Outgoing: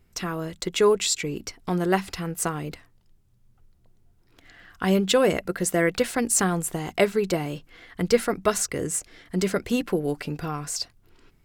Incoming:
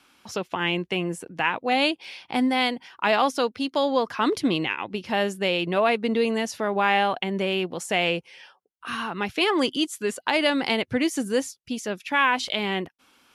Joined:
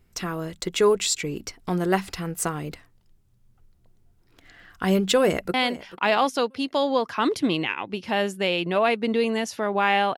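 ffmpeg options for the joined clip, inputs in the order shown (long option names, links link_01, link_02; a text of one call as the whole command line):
ffmpeg -i cue0.wav -i cue1.wav -filter_complex "[0:a]apad=whole_dur=10.17,atrim=end=10.17,atrim=end=5.542[link_01];[1:a]atrim=start=2.548:end=7.18[link_02];[link_01][link_02]acrossfade=duration=0.004:curve1=hsin:curve2=hsin,asplit=2[link_03][link_04];[link_04]afade=type=in:start_time=5.18:duration=0.01,afade=type=out:start_time=5.54:duration=0.01,aecho=0:1:440|880|1320:0.158489|0.0475468|0.014264[link_05];[link_03][link_05]amix=inputs=2:normalize=0" out.wav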